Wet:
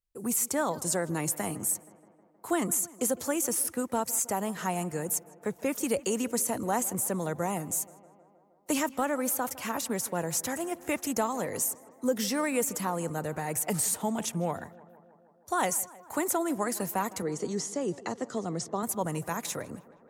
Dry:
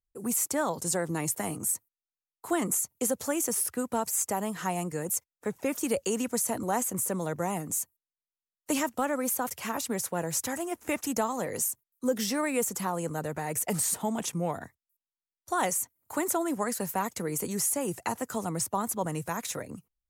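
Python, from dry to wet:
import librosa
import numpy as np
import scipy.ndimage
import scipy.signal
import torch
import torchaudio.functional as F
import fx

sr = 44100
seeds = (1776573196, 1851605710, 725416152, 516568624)

p1 = fx.cabinet(x, sr, low_hz=130.0, low_slope=12, high_hz=6600.0, hz=(400.0, 920.0, 1500.0, 2500.0), db=(4, -8, -5, -9), at=(17.22, 18.83))
y = p1 + fx.echo_tape(p1, sr, ms=158, feedback_pct=76, wet_db=-18, lp_hz=2300.0, drive_db=16.0, wow_cents=8, dry=0)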